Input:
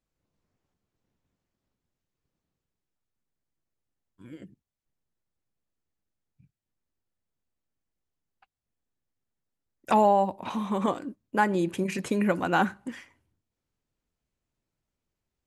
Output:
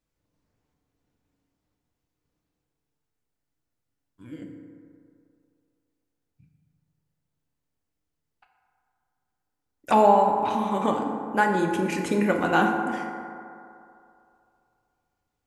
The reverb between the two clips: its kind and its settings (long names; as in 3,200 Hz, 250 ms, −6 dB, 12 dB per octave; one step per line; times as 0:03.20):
feedback delay network reverb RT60 2.6 s, low-frequency decay 0.8×, high-frequency decay 0.35×, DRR 1.5 dB
level +1.5 dB